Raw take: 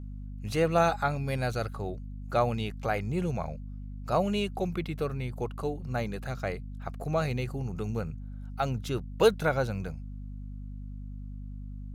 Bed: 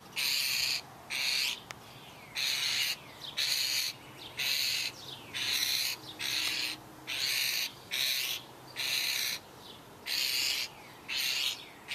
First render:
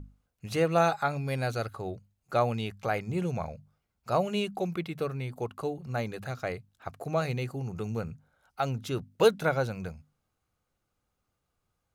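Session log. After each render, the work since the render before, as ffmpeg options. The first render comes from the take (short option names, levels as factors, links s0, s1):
-af "bandreject=f=50:t=h:w=6,bandreject=f=100:t=h:w=6,bandreject=f=150:t=h:w=6,bandreject=f=200:t=h:w=6,bandreject=f=250:t=h:w=6"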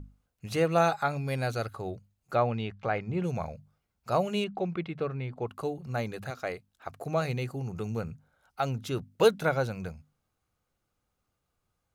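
-filter_complex "[0:a]asettb=1/sr,asplit=3[s0][s1][s2];[s0]atrim=end=2.354[s3];[s1]atrim=start=2.35:end=3.24,asetpts=PTS-STARTPTS,afade=t=in:d=0.004:c=qsin,afade=t=out:st=0.886:d=0.004:c=qsin,lowpass=3200[s4];[s2]atrim=start=3.236[s5];[s3][s4]acrossfade=d=0.004:c1=hsin:c2=qsin[s6];[s6][s5]acrossfade=d=0.004:c1=qsin:c2=hsin,asettb=1/sr,asplit=3[s7][s8][s9];[s7]atrim=end=4.444[s10];[s8]atrim=start=4.44:end=5.47,asetpts=PTS-STARTPTS,afade=t=in:d=0.004:c=qsin,afade=t=out:st=1.026:d=0.004:c=qsin,lowpass=3100[s11];[s9]atrim=start=5.466[s12];[s10][s11]acrossfade=d=0.004:c1=hsin:c2=qsin[s13];[s13][s12]acrossfade=d=0.004:c1=qsin:c2=hsin,asettb=1/sr,asplit=3[s14][s15][s16];[s14]atrim=end=6.304[s17];[s15]atrim=start=6.3:end=6.9,asetpts=PTS-STARTPTS,afade=t=in:d=0.004:c=qsin,afade=t=out:st=0.596:d=0.004:c=qsin,equalizer=f=120:w=1.3:g=-11[s18];[s16]atrim=start=6.896[s19];[s17][s18]acrossfade=d=0.004:c1=hsin:c2=qsin[s20];[s20][s19]acrossfade=d=0.004:c1=qsin:c2=hsin"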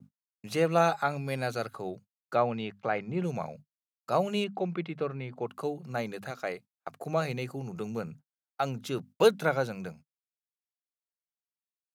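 -af "agate=range=0.00891:threshold=0.00501:ratio=16:detection=peak,highpass=f=140:w=0.5412,highpass=f=140:w=1.3066"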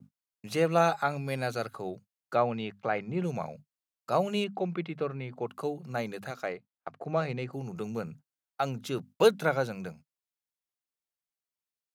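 -filter_complex "[0:a]asettb=1/sr,asplit=3[s0][s1][s2];[s0]atrim=end=6.464[s3];[s1]atrim=start=6.46:end=7.53,asetpts=PTS-STARTPTS,afade=t=in:d=0.004:c=qsin,afade=t=out:st=1.066:d=0.004:c=qsin,adynamicsmooth=sensitivity=2.5:basefreq=3300[s4];[s2]atrim=start=7.526[s5];[s3][s4]acrossfade=d=0.004:c1=hsin:c2=qsin[s6];[s6][s5]acrossfade=d=0.004:c1=qsin:c2=hsin"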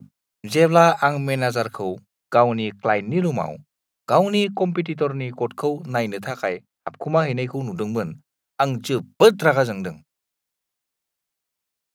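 -af "volume=3.35,alimiter=limit=0.891:level=0:latency=1"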